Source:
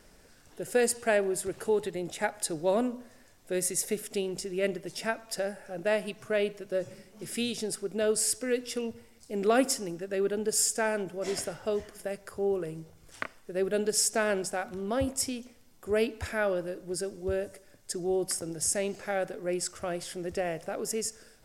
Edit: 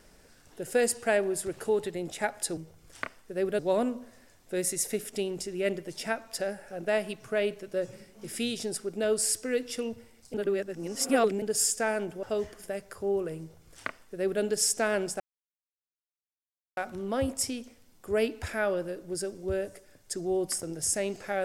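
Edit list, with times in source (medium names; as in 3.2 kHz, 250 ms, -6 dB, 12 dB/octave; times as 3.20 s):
9.32–10.40 s: reverse
11.21–11.59 s: delete
12.76–13.78 s: copy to 2.57 s
14.56 s: insert silence 1.57 s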